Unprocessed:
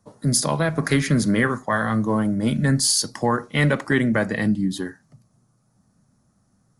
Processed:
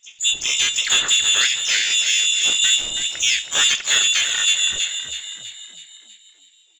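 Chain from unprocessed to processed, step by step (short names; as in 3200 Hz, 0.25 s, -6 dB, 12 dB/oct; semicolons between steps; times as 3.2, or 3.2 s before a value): careless resampling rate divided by 3×, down filtered, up hold; inverted band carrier 3700 Hz; in parallel at -4 dB: soft clip -18.5 dBFS, distortion -12 dB; on the sum: harmoniser -4 st -4 dB, +12 st -2 dB; frequency-shifting echo 0.324 s, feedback 52%, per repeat +52 Hz, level -8 dB; gain -4.5 dB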